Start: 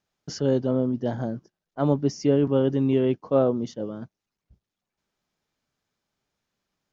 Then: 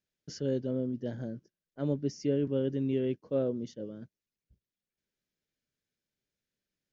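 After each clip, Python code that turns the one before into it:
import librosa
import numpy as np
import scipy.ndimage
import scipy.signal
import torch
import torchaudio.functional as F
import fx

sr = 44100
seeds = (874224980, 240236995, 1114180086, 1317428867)

y = fx.band_shelf(x, sr, hz=940.0, db=-11.5, octaves=1.1)
y = y * 10.0 ** (-8.5 / 20.0)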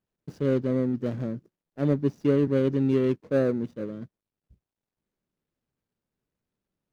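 y = scipy.signal.medfilt(x, 41)
y = y * 10.0 ** (7.5 / 20.0)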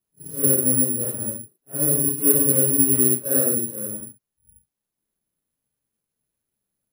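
y = fx.phase_scramble(x, sr, seeds[0], window_ms=200)
y = (np.kron(y[::4], np.eye(4)[0]) * 4)[:len(y)]
y = y * 10.0 ** (-1.5 / 20.0)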